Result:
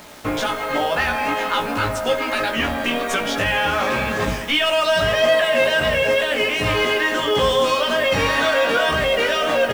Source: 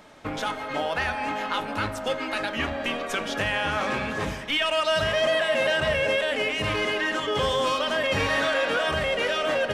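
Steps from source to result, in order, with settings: in parallel at +1 dB: limiter -21 dBFS, peak gain reduction 8 dB; on the sum: bit-crush 7-bit; doubler 17 ms -3.5 dB

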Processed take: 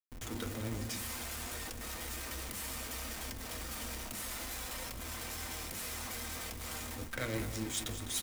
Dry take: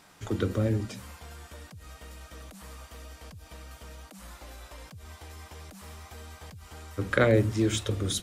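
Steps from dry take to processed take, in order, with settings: octaver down 1 oct, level -3 dB; gate with hold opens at -45 dBFS; pre-emphasis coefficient 0.9; de-hum 362 Hz, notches 10; reverse; compressor 4:1, threshold -50 dBFS, peak gain reduction 17 dB; reverse; vibrato 6 Hz 47 cents; companded quantiser 4-bit; backlash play -53.5 dBFS; echo 0.205 s -11.5 dB; on a send at -4 dB: reverb RT60 0.15 s, pre-delay 3 ms; on the sum: gain +12.5 dB

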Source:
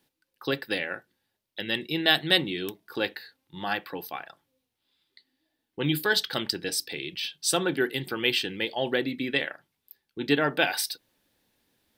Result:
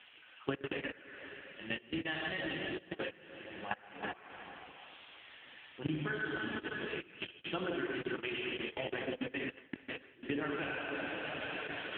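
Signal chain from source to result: switching spikes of -22 dBFS; dark delay 0.14 s, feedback 58%, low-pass 1900 Hz, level -22 dB; plate-style reverb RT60 3.7 s, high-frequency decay 0.95×, DRR -4 dB; level quantiser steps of 23 dB; 7.39–10.23 expander -35 dBFS; elliptic low-pass 3000 Hz, stop band 50 dB; notch 490 Hz, Q 12; compressor 6:1, threshold -44 dBFS, peak gain reduction 20.5 dB; gain +10 dB; AMR-NB 5.9 kbps 8000 Hz

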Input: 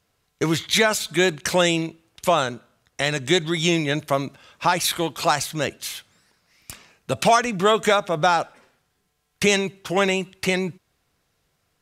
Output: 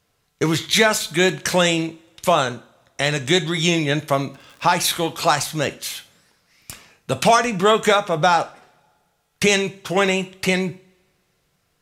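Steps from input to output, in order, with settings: 4.18–4.74 crackle 30/s -> 77/s -34 dBFS; two-slope reverb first 0.36 s, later 1.8 s, from -27 dB, DRR 10.5 dB; gain +2 dB

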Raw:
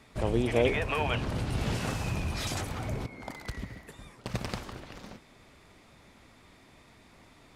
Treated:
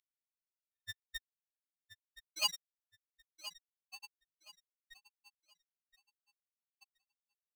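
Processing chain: loudest bins only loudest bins 8; brick-wall FIR high-pass 2700 Hz; feedback echo 1.022 s, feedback 26%, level -14 dB; polarity switched at an audio rate 930 Hz; gain +17.5 dB

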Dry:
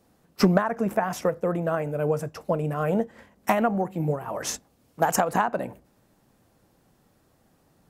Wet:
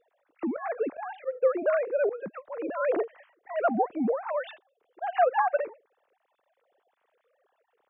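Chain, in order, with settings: sine-wave speech; auto swell 0.179 s

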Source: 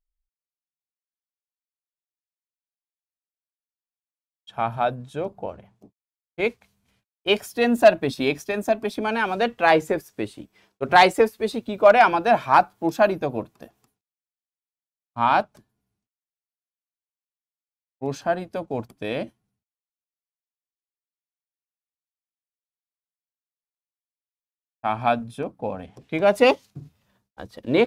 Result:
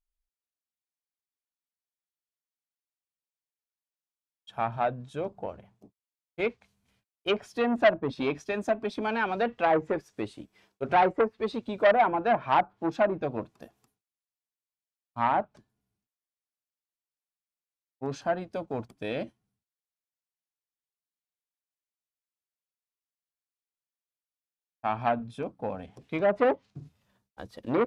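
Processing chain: treble ducked by the level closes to 1000 Hz, closed at -14 dBFS; core saturation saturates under 1100 Hz; gain -4 dB

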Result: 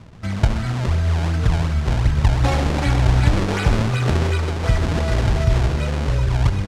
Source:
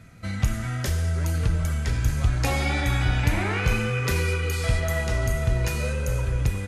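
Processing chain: high shelf 3600 Hz -9.5 dB; notch 500 Hz, Q 14; decimation with a swept rate 33×, swing 160% 2.7 Hz; LPF 6700 Hz 12 dB/oct; on a send: echo 0.128 s -11 dB; on the sum: gain +6 dB

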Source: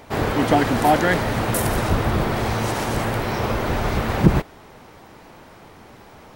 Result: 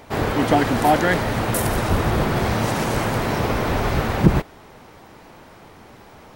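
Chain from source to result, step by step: 1.69–4.08 frequency-shifting echo 0.214 s, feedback 60%, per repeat +44 Hz, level -7 dB

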